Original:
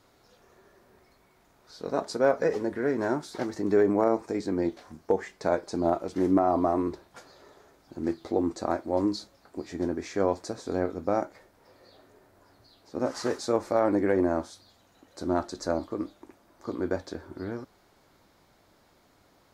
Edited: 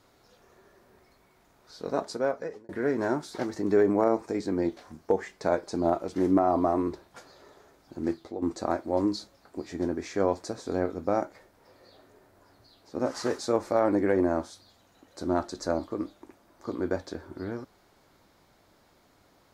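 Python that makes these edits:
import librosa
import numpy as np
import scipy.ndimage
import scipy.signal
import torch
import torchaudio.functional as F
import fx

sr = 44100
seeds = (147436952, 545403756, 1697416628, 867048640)

y = fx.edit(x, sr, fx.fade_out_span(start_s=1.94, length_s=0.75),
    fx.fade_out_to(start_s=8.15, length_s=0.27, curve='qua', floor_db=-11.0), tone=tone)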